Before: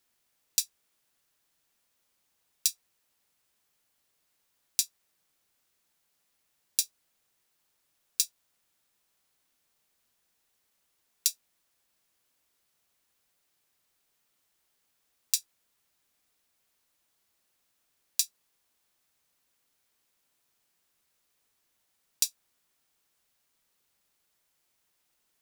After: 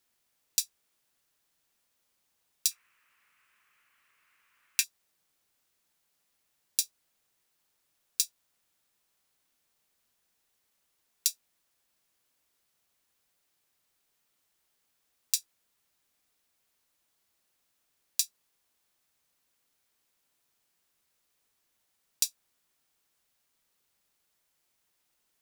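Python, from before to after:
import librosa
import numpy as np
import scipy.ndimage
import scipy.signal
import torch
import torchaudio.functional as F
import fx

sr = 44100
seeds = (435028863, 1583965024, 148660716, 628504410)

y = fx.band_shelf(x, sr, hz=1700.0, db=16.0, octaves=1.7, at=(2.71, 4.84))
y = F.gain(torch.from_numpy(y), -1.0).numpy()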